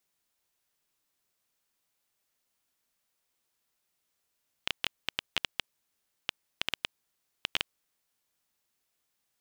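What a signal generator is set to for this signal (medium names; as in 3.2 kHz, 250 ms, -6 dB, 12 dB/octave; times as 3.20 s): random clicks 6.3 per s -9.5 dBFS 3.09 s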